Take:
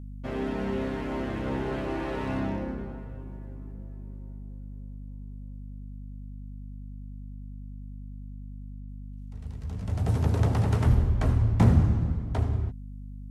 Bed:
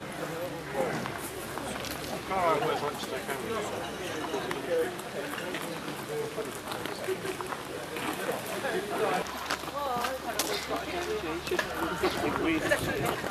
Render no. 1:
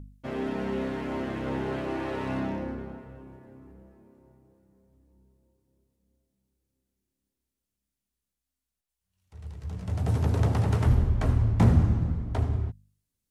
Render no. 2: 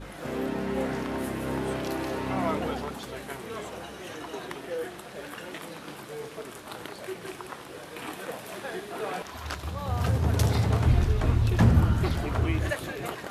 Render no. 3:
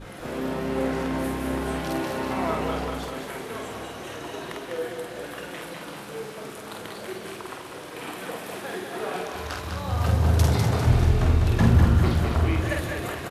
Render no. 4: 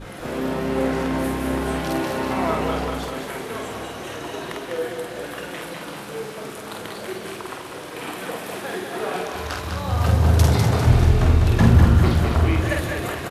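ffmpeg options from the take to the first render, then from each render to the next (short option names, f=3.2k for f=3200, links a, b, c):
-af "bandreject=f=50:t=h:w=4,bandreject=f=100:t=h:w=4,bandreject=f=150:t=h:w=4,bandreject=f=200:t=h:w=4,bandreject=f=250:t=h:w=4"
-filter_complex "[1:a]volume=-4.5dB[a];[0:a][a]amix=inputs=2:normalize=0"
-filter_complex "[0:a]asplit=2[a][b];[b]adelay=49,volume=-3.5dB[c];[a][c]amix=inputs=2:normalize=0,asplit=2[d][e];[e]aecho=0:1:200|400|600|800|1000|1200|1400:0.562|0.304|0.164|0.0885|0.0478|0.0258|0.0139[f];[d][f]amix=inputs=2:normalize=0"
-af "volume=4dB"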